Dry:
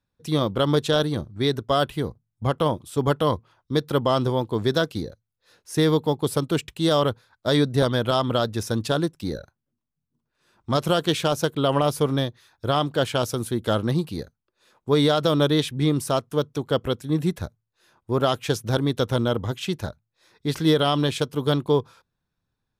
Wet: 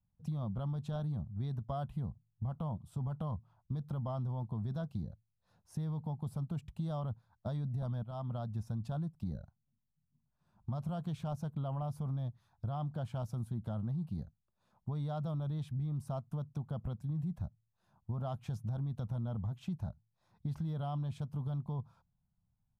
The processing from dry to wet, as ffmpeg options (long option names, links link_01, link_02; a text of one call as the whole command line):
ffmpeg -i in.wav -filter_complex "[0:a]asplit=2[link_01][link_02];[link_01]atrim=end=8.03,asetpts=PTS-STARTPTS,afade=type=out:start_time=8.026:duration=0.004:curve=hsin:silence=0.158489[link_03];[link_02]atrim=start=8.03,asetpts=PTS-STARTPTS,afade=type=in:duration=0.84:silence=0.158489[link_04];[link_03][link_04]concat=n=2:v=0:a=1,firequalizer=gain_entry='entry(200,0);entry(280,-17);entry(440,-22);entry(700,-7);entry(1800,-24)':delay=0.05:min_phase=1,alimiter=level_in=1dB:limit=-24dB:level=0:latency=1:release=15,volume=-1dB,acompressor=threshold=-38dB:ratio=3,volume=1.5dB" out.wav